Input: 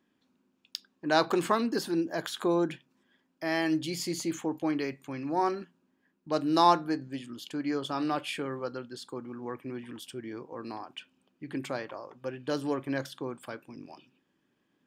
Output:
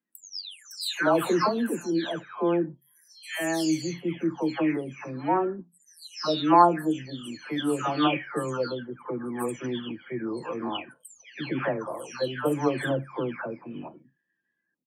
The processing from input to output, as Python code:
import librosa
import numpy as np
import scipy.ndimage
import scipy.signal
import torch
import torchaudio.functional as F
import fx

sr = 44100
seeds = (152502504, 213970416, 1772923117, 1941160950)

y = fx.spec_delay(x, sr, highs='early', ms=599)
y = fx.noise_reduce_blind(y, sr, reduce_db=23)
y = fx.rider(y, sr, range_db=4, speed_s=2.0)
y = y * librosa.db_to_amplitude(5.0)